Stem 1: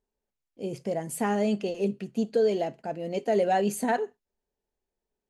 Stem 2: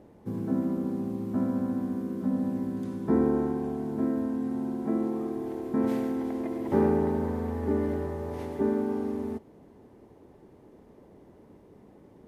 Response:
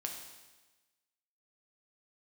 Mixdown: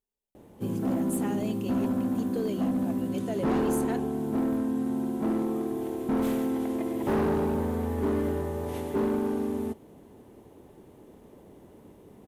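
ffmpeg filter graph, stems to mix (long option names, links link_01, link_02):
-filter_complex "[0:a]volume=-9.5dB[link_01];[1:a]adelay=350,volume=2dB[link_02];[link_01][link_02]amix=inputs=2:normalize=0,aexciter=amount=1.8:drive=4.1:freq=2700,asoftclip=type=hard:threshold=-22.5dB"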